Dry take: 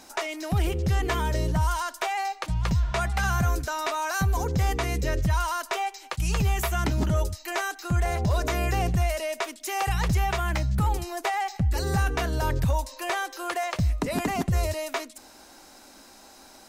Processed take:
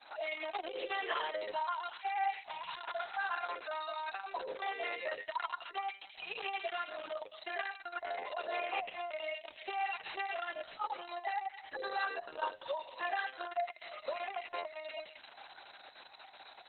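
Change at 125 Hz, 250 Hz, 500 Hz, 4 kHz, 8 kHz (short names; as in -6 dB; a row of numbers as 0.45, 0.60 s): under -40 dB, -26.5 dB, -9.0 dB, -9.0 dB, under -40 dB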